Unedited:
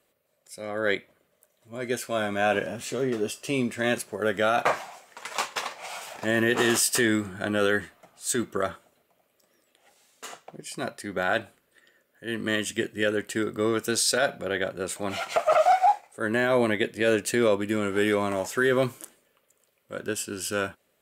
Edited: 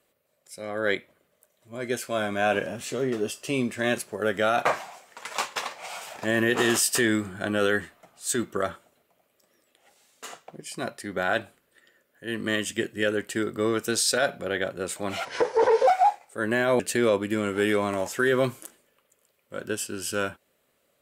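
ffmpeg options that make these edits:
-filter_complex "[0:a]asplit=4[a][b][c][d];[a]atrim=end=15.254[e];[b]atrim=start=15.25:end=15.7,asetpts=PTS-STARTPTS,asetrate=31752,aresample=44100,atrim=end_sample=27562,asetpts=PTS-STARTPTS[f];[c]atrim=start=15.696:end=16.622[g];[d]atrim=start=17.178[h];[e][f]acrossfade=d=0.004:c1=hsin:c2=hsin[i];[i][g]acrossfade=d=0.004:c1=hsin:c2=hsin[j];[j][h]acrossfade=d=0.004:c1=hsin:c2=hsin"

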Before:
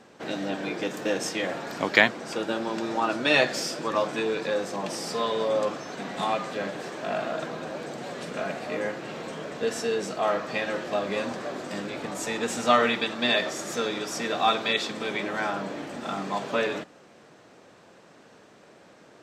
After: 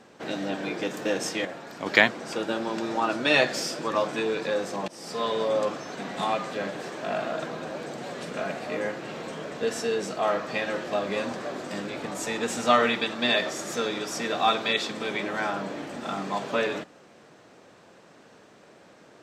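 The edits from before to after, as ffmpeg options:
-filter_complex "[0:a]asplit=4[a][b][c][d];[a]atrim=end=1.452[e];[b]atrim=start=1.448:end=1.862,asetpts=PTS-STARTPTS,volume=-6.5dB[f];[c]atrim=start=1.858:end=4.88,asetpts=PTS-STARTPTS,afade=t=out:st=3.018:d=0.004:c=hsin:silence=0.1[g];[d]atrim=start=4.88,asetpts=PTS-STARTPTS,afade=t=in:d=0.39:silence=0.1[h];[e][f]acrossfade=d=0.004:c1=hsin:c2=hsin[i];[g][h]concat=n=2:v=0:a=1[j];[i][j]acrossfade=d=0.004:c1=hsin:c2=hsin"

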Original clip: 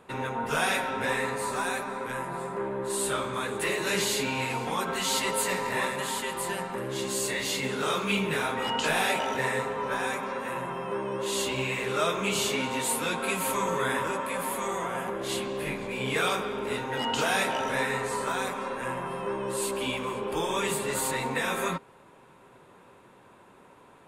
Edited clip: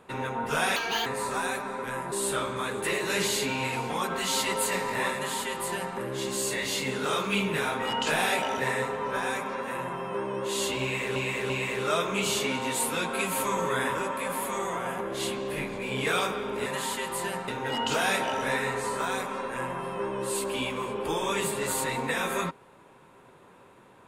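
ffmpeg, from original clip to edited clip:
-filter_complex "[0:a]asplit=8[a][b][c][d][e][f][g][h];[a]atrim=end=0.764[i];[b]atrim=start=0.76:end=1.28,asetpts=PTS-STARTPTS,asetrate=76734,aresample=44100,atrim=end_sample=13179,asetpts=PTS-STARTPTS[j];[c]atrim=start=1.276:end=2.342[k];[d]atrim=start=2.888:end=11.932[l];[e]atrim=start=11.588:end=11.932[m];[f]atrim=start=11.588:end=16.752[n];[g]atrim=start=5.908:end=6.732[o];[h]atrim=start=16.748[p];[i][j]acrossfade=d=0.004:c1=hsin:c2=hsin[q];[q][k]acrossfade=d=0.004:c1=hsin:c2=hsin[r];[r][l]acrossfade=d=0.004:c1=hsin:c2=hsin[s];[s][m]acrossfade=d=0.004:c1=hsin:c2=hsin[t];[t][n]acrossfade=d=0.004:c1=hsin:c2=hsin[u];[u][o]acrossfade=d=0.004:c1=hsin:c2=hsin[v];[v][p]acrossfade=d=0.004:c1=hsin:c2=hsin"

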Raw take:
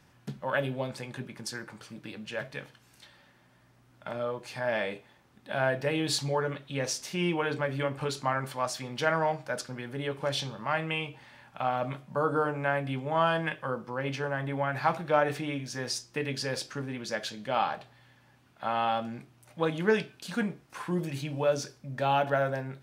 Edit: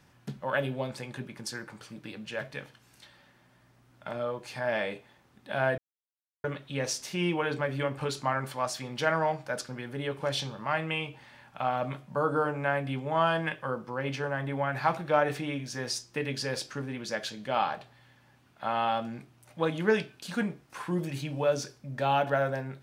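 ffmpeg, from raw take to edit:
-filter_complex "[0:a]asplit=3[a][b][c];[a]atrim=end=5.78,asetpts=PTS-STARTPTS,afade=t=out:st=5.776:d=0.004:c=hsin[d];[b]atrim=start=5.78:end=6.44,asetpts=PTS-STARTPTS,volume=0[e];[c]atrim=start=6.44,asetpts=PTS-STARTPTS,afade=t=in:d=0.004:c=hsin[f];[d][e][f]concat=n=3:v=0:a=1"

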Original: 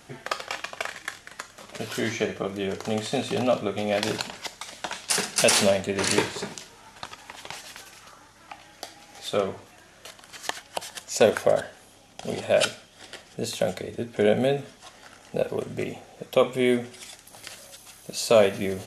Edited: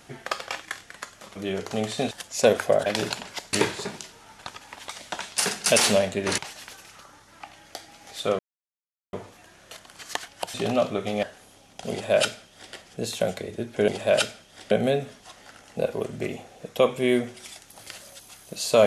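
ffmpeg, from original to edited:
-filter_complex "[0:a]asplit=13[a][b][c][d][e][f][g][h][i][j][k][l][m];[a]atrim=end=0.632[n];[b]atrim=start=0.998:end=1.732[o];[c]atrim=start=2.498:end=3.252[p];[d]atrim=start=10.878:end=11.632[q];[e]atrim=start=3.938:end=4.612[r];[f]atrim=start=6.098:end=7.462[s];[g]atrim=start=4.608:end=6.102[t];[h]atrim=start=7.458:end=9.47,asetpts=PTS-STARTPTS,afade=t=out:st=2.008:d=0.004:c=hsin,apad=pad_dur=0.74[u];[i]atrim=start=9.47:end=10.882,asetpts=PTS-STARTPTS,afade=t=in:d=0.004:c=hsin[v];[j]atrim=start=3.248:end=3.942[w];[k]atrim=start=11.628:end=14.282[x];[l]atrim=start=12.308:end=13.142[y];[m]atrim=start=14.278[z];[n][o]acrossfade=d=0.004:c1=hsin:c2=hsin[aa];[aa][p]acrossfade=d=0.004:c1=hsin:c2=hsin[ab];[ab][q]acrossfade=d=0.004:c1=hsin:c2=hsin[ac];[ac][r]acrossfade=d=0.004:c1=hsin:c2=hsin[ad];[ad][s]acrossfade=d=0.004:c1=hsin:c2=hsin[ae];[ae][t]acrossfade=d=0.004:c1=hsin:c2=hsin[af];[u][v]concat=n=2:v=0:a=1[ag];[af][ag]acrossfade=d=0.004:c1=hsin:c2=hsin[ah];[ah][w]acrossfade=d=0.004:c1=hsin:c2=hsin[ai];[ai][x]acrossfade=d=0.004:c1=hsin:c2=hsin[aj];[aj][y]acrossfade=d=0.004:c1=hsin:c2=hsin[ak];[ak][z]acrossfade=d=0.004:c1=hsin:c2=hsin"

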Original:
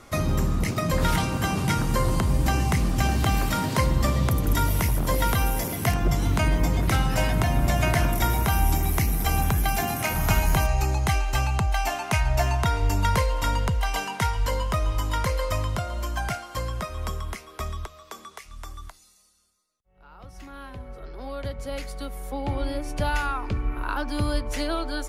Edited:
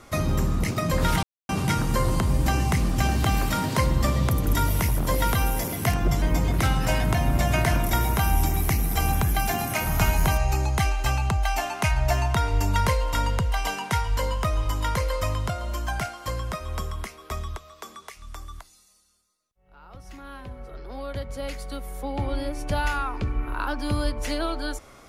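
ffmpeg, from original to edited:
-filter_complex "[0:a]asplit=4[a][b][c][d];[a]atrim=end=1.23,asetpts=PTS-STARTPTS,afade=t=out:st=1.226:d=0.004:c=hsin[e];[b]atrim=start=1.23:end=1.49,asetpts=PTS-STARTPTS,volume=0[f];[c]atrim=start=1.49:end=6.222,asetpts=PTS-STARTPTS,afade=t=in:d=0.004:c=hsin[g];[d]atrim=start=6.508[h];[e][f][g]concat=n=3:v=0:a=1[i];[i][h]acrossfade=d=0.004:c1=hsin:c2=hsin"

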